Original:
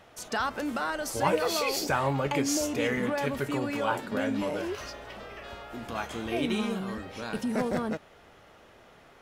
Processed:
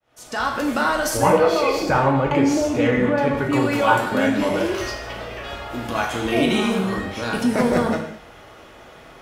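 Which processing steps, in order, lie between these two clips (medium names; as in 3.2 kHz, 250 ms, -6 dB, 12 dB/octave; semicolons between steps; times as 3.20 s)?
fade-in on the opening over 0.72 s; 1.17–3.53 s: low-pass 1.4 kHz 6 dB/octave; gated-style reverb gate 250 ms falling, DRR 1 dB; trim +8.5 dB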